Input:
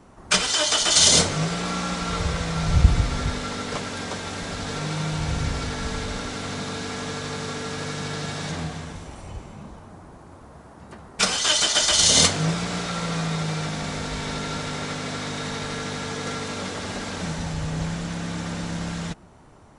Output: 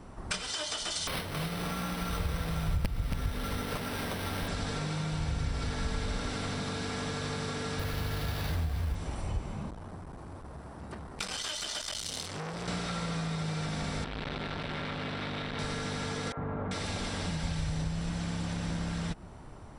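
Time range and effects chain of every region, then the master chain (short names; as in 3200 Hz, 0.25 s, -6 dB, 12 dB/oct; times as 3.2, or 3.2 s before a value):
1.07–4.48 sample-rate reducer 7300 Hz + wrapped overs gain 4.5 dB + echo 0.275 s -11 dB
7.79–8.95 resonant low shelf 100 Hz +13 dB, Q 1.5 + sample-rate reducer 8300 Hz
9.7–12.68 compressor 2:1, threshold -27 dBFS + core saturation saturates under 3200 Hz
14.04–15.59 resonant high shelf 4700 Hz -12.5 dB, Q 1.5 + core saturation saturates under 960 Hz
16.32–18.7 bell 220 Hz -4 dB 0.34 oct + three bands offset in time mids, lows, highs 50/390 ms, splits 430/1400 Hz
whole clip: compressor 10:1, threshold -32 dBFS; low shelf 88 Hz +9 dB; notch 6700 Hz, Q 7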